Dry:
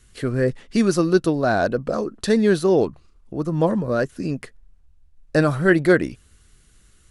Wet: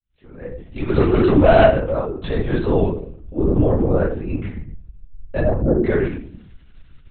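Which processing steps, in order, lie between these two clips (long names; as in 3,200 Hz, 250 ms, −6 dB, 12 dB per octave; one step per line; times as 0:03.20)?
fade in at the beginning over 1.71 s
0:00.89–0:01.66: leveller curve on the samples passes 3
0:03.36–0:04.06: parametric band 340 Hz +12 dB 1.4 octaves
0:05.39–0:05.84: Butterworth low-pass 910 Hz 36 dB per octave
brickwall limiter −10 dBFS, peak gain reduction 10.5 dB
automatic gain control gain up to 4 dB
convolution reverb RT60 0.50 s, pre-delay 3 ms, DRR −13 dB
linear-prediction vocoder at 8 kHz whisper
level −16 dB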